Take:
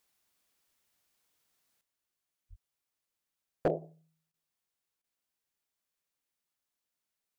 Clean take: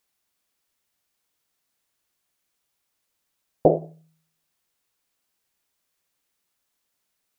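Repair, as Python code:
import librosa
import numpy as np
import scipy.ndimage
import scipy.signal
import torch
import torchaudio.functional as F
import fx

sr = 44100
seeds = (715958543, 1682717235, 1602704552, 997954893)

y = fx.fix_declip(x, sr, threshold_db=-20.5)
y = fx.fix_deplosive(y, sr, at_s=(2.49,))
y = fx.fix_interpolate(y, sr, at_s=(4.32, 5.02), length_ms=18.0)
y = fx.gain(y, sr, db=fx.steps((0.0, 0.0), (1.81, 11.0)))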